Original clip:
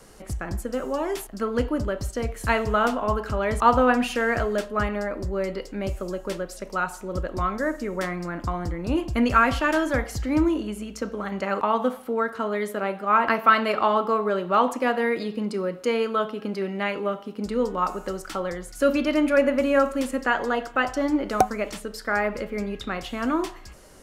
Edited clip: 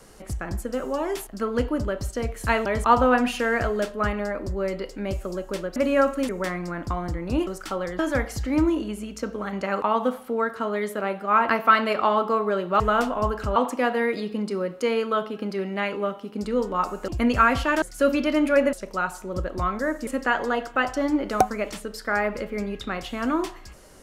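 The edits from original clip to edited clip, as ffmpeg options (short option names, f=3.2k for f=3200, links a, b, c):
-filter_complex "[0:a]asplit=12[a][b][c][d][e][f][g][h][i][j][k][l];[a]atrim=end=2.662[m];[b]atrim=start=3.418:end=6.522[n];[c]atrim=start=19.538:end=20.072[o];[d]atrim=start=7.858:end=9.042[p];[e]atrim=start=18.108:end=18.632[q];[f]atrim=start=9.778:end=14.592[r];[g]atrim=start=2.658:end=3.422[s];[h]atrim=start=14.588:end=18.112[t];[i]atrim=start=9.038:end=9.782[u];[j]atrim=start=18.628:end=19.542[v];[k]atrim=start=6.518:end=7.862[w];[l]atrim=start=20.068[x];[m][n]acrossfade=d=0.004:c1=hsin:c2=hsin[y];[y][o]acrossfade=d=0.004:c1=hsin:c2=hsin[z];[z][p]acrossfade=d=0.004:c1=hsin:c2=hsin[aa];[aa][q]acrossfade=d=0.004:c1=hsin:c2=hsin[ab];[ab][r]acrossfade=d=0.004:c1=hsin:c2=hsin[ac];[ac][s]acrossfade=d=0.004:c1=hsin:c2=hsin[ad];[ad][t]acrossfade=d=0.004:c1=hsin:c2=hsin[ae];[ae][u]acrossfade=d=0.004:c1=hsin:c2=hsin[af];[af][v]acrossfade=d=0.004:c1=hsin:c2=hsin[ag];[ag][w]acrossfade=d=0.004:c1=hsin:c2=hsin[ah];[ah][x]acrossfade=d=0.004:c1=hsin:c2=hsin"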